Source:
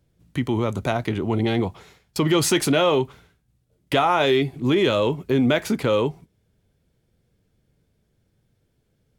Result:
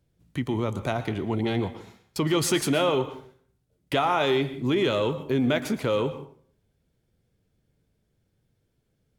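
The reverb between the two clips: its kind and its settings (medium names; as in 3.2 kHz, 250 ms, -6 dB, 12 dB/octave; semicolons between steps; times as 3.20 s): plate-style reverb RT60 0.54 s, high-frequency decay 0.7×, pre-delay 100 ms, DRR 12.5 dB; trim -4.5 dB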